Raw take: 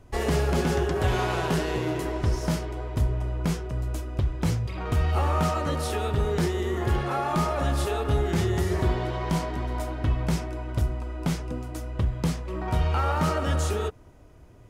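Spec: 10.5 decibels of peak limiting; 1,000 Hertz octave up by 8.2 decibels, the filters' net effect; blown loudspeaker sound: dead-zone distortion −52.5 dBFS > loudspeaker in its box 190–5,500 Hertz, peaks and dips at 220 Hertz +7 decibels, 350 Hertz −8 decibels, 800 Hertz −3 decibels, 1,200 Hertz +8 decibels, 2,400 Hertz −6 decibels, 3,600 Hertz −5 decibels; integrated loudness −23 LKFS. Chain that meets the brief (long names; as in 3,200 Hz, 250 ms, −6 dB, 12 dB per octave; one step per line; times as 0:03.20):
parametric band 1,000 Hz +7 dB
brickwall limiter −22 dBFS
dead-zone distortion −52.5 dBFS
loudspeaker in its box 190–5,500 Hz, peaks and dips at 220 Hz +7 dB, 350 Hz −8 dB, 800 Hz −3 dB, 1,200 Hz +8 dB, 2,400 Hz −6 dB, 3,600 Hz −5 dB
level +9.5 dB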